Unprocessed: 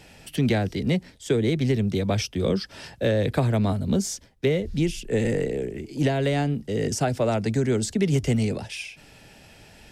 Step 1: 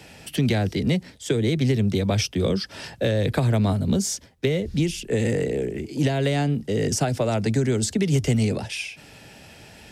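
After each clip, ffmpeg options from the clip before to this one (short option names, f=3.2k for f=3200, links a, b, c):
-filter_complex "[0:a]highpass=58,acrossover=split=130|3000[a][b][c];[b]acompressor=threshold=-24dB:ratio=6[d];[a][d][c]amix=inputs=3:normalize=0,volume=4dB"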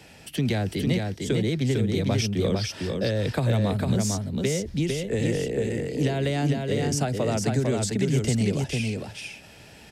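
-af "aecho=1:1:452:0.668,volume=-3.5dB"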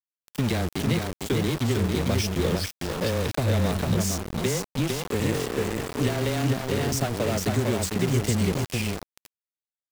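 -af "afreqshift=-15,aeval=exprs='val(0)*gte(abs(val(0)),0.0473)':c=same"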